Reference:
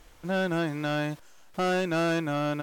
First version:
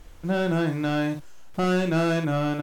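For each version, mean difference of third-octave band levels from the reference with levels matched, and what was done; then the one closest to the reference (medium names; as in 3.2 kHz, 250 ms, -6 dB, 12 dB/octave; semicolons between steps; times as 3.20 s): 3.0 dB: bass shelf 280 Hz +9 dB; doubling 50 ms -7 dB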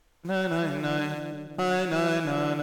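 4.5 dB: gate -41 dBFS, range -11 dB; on a send: two-band feedback delay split 530 Hz, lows 333 ms, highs 121 ms, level -7 dB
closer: first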